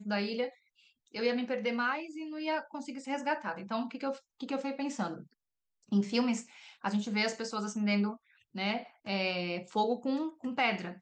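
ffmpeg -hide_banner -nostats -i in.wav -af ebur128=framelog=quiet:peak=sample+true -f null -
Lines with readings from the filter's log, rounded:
Integrated loudness:
  I:         -33.8 LUFS
  Threshold: -44.1 LUFS
Loudness range:
  LRA:         3.4 LU
  Threshold: -54.5 LUFS
  LRA low:   -36.5 LUFS
  LRA high:  -33.1 LUFS
Sample peak:
  Peak:      -16.8 dBFS
True peak:
  Peak:      -16.7 dBFS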